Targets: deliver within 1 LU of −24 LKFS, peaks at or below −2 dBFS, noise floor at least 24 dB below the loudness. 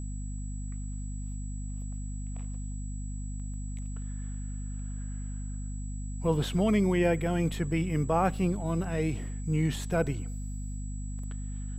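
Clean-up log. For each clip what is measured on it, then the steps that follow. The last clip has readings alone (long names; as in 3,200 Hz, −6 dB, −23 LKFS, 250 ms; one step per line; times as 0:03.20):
mains hum 50 Hz; hum harmonics up to 250 Hz; level of the hum −33 dBFS; interfering tone 7,800 Hz; level of the tone −50 dBFS; integrated loudness −32.5 LKFS; sample peak −12.0 dBFS; target loudness −24.0 LKFS
→ mains-hum notches 50/100/150/200/250 Hz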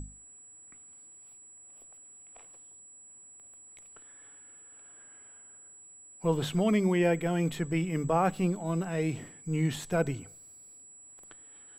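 mains hum none found; interfering tone 7,800 Hz; level of the tone −50 dBFS
→ notch filter 7,800 Hz, Q 30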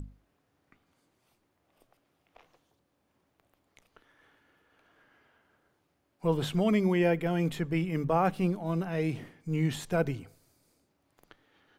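interfering tone none found; integrated loudness −29.5 LKFS; sample peak −13.5 dBFS; target loudness −24.0 LKFS
→ level +5.5 dB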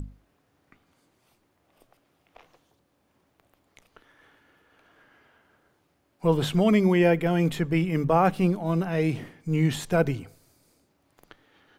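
integrated loudness −24.0 LKFS; sample peak −8.0 dBFS; background noise floor −70 dBFS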